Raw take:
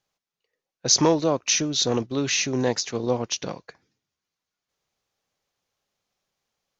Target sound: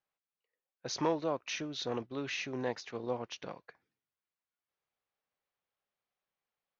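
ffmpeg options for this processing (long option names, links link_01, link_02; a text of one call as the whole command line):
ffmpeg -i in.wav -af "lowpass=2600,lowshelf=frequency=440:gain=-8.5,volume=-7.5dB" out.wav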